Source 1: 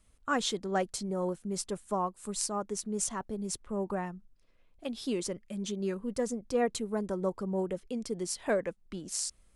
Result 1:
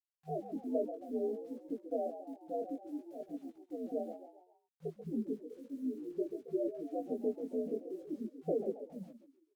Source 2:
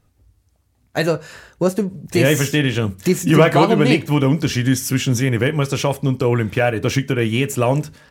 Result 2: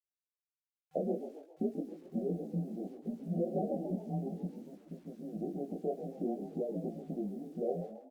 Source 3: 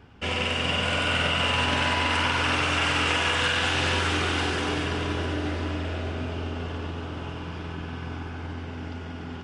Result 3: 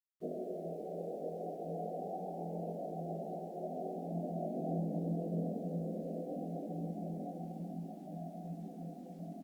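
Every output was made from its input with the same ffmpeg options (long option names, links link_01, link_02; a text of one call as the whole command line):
ffmpeg -i in.wav -filter_complex "[0:a]afftdn=noise_reduction=33:noise_floor=-34,acontrast=71,equalizer=frequency=420:width_type=o:width=0.83:gain=-7,acompressor=threshold=-24dB:ratio=20,afftfilt=real='re*between(b*sr/4096,290,900)':imag='im*between(b*sr/4096,290,900)':win_size=4096:overlap=0.75,afreqshift=-130,acrusher=bits=10:mix=0:aa=0.000001,flanger=delay=17.5:depth=5.5:speed=0.58,asplit=5[link_01][link_02][link_03][link_04][link_05];[link_02]adelay=136,afreqshift=44,volume=-10.5dB[link_06];[link_03]adelay=272,afreqshift=88,volume=-18dB[link_07];[link_04]adelay=408,afreqshift=132,volume=-25.6dB[link_08];[link_05]adelay=544,afreqshift=176,volume=-33.1dB[link_09];[link_01][link_06][link_07][link_08][link_09]amix=inputs=5:normalize=0" -ar 48000 -c:a libopus -b:a 96k out.opus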